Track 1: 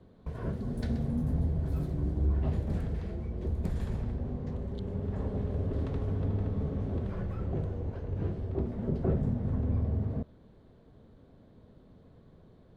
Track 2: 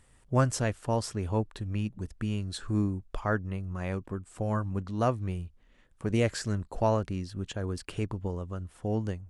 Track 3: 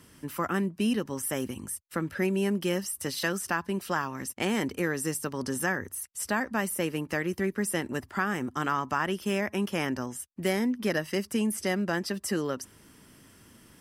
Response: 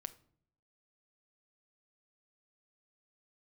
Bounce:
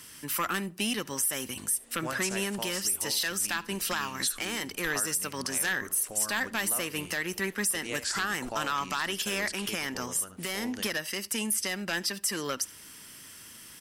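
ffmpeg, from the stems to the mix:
-filter_complex "[0:a]highpass=frequency=300:width=0.5412,highpass=frequency=300:width=1.3066,adelay=750,volume=-11dB[link_01];[1:a]equalizer=frequency=100:width_type=o:width=1:gain=-15,acompressor=threshold=-35dB:ratio=2,adelay=1700,volume=0dB,asplit=3[link_02][link_03][link_04];[link_03]volume=-6.5dB[link_05];[link_04]volume=-9dB[link_06];[2:a]aeval=exprs='0.224*sin(PI/2*1.78*val(0)/0.224)':channel_layout=same,volume=-7dB,asplit=3[link_07][link_08][link_09];[link_08]volume=-7.5dB[link_10];[link_09]volume=-23dB[link_11];[3:a]atrim=start_sample=2205[link_12];[link_05][link_10]amix=inputs=2:normalize=0[link_13];[link_13][link_12]afir=irnorm=-1:irlink=0[link_14];[link_06][link_11]amix=inputs=2:normalize=0,aecho=0:1:75:1[link_15];[link_01][link_02][link_07][link_14][link_15]amix=inputs=5:normalize=0,tiltshelf=frequency=1200:gain=-8.5,alimiter=limit=-18dB:level=0:latency=1:release=233"

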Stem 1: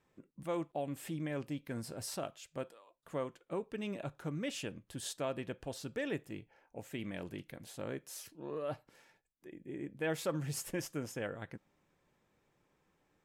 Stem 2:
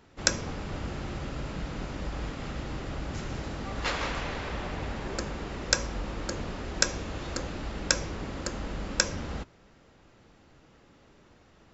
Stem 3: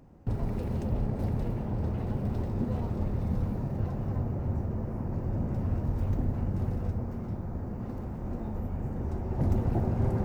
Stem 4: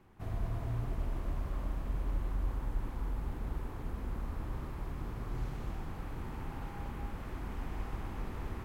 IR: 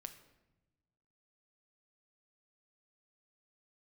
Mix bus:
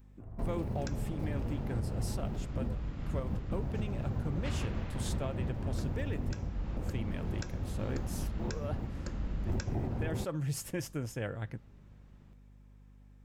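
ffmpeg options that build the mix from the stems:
-filter_complex "[0:a]equalizer=frequency=110:width_type=o:width=0.79:gain=11,aeval=exprs='val(0)+0.00158*(sin(2*PI*50*n/s)+sin(2*PI*2*50*n/s)/2+sin(2*PI*3*50*n/s)/3+sin(2*PI*4*50*n/s)/4+sin(2*PI*5*50*n/s)/5)':channel_layout=same,volume=1dB,asplit=2[link_01][link_02];[1:a]bass=frequency=250:gain=13,treble=frequency=4000:gain=-5,adelay=600,volume=-11.5dB[link_03];[2:a]volume=-2.5dB[link_04];[3:a]lowpass=1900,adynamicsmooth=sensitivity=3:basefreq=920,volume=-9.5dB[link_05];[link_02]apad=whole_len=451873[link_06];[link_04][link_06]sidechaingate=range=-33dB:threshold=-47dB:ratio=16:detection=peak[link_07];[link_01][link_03][link_07][link_05]amix=inputs=4:normalize=0,alimiter=level_in=0.5dB:limit=-24dB:level=0:latency=1:release=380,volume=-0.5dB"

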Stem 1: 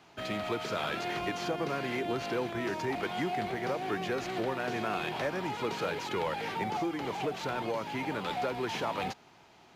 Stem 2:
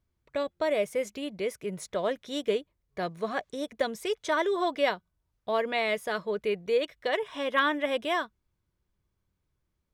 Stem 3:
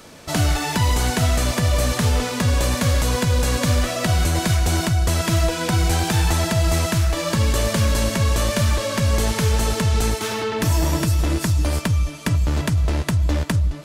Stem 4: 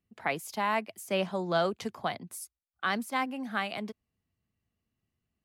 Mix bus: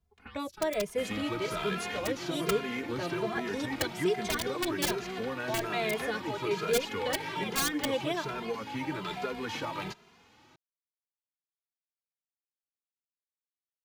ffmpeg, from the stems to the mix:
ffmpeg -i stem1.wav -i stem2.wav -i stem3.wav -i stem4.wav -filter_complex "[0:a]equalizer=frequency=740:width=4.8:gain=-8,adelay=800,volume=2.5dB[link_01];[1:a]aeval=exprs='(mod(7.94*val(0)+1,2)-1)/7.94':channel_layout=same,equalizer=frequency=81:width=1.5:gain=7.5,volume=1dB[link_02];[3:a]acompressor=threshold=-34dB:ratio=10,aeval=exprs='val(0)*sin(2*PI*630*n/s)':channel_layout=same,volume=-5.5dB[link_03];[link_01][link_02][link_03]amix=inputs=3:normalize=0,acrossover=split=460|3000[link_04][link_05][link_06];[link_05]acompressor=threshold=-28dB:ratio=6[link_07];[link_04][link_07][link_06]amix=inputs=3:normalize=0,bandreject=frequency=570:width=12,asplit=2[link_08][link_09];[link_09]adelay=2.5,afreqshift=1.2[link_10];[link_08][link_10]amix=inputs=2:normalize=1" out.wav

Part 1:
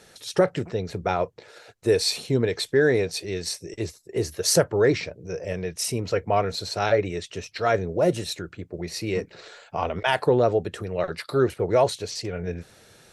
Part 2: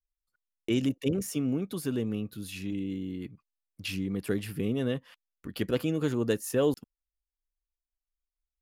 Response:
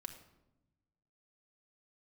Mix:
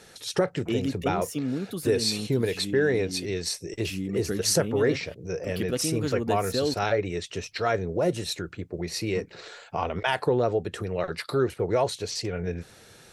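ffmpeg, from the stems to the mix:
-filter_complex "[0:a]equalizer=frequency=610:width=6.3:gain=-3.5,volume=1.5dB[link_01];[1:a]bandreject=frequency=1000:width=6.6,volume=2dB[link_02];[link_01][link_02]amix=inputs=2:normalize=0,acompressor=threshold=-28dB:ratio=1.5"

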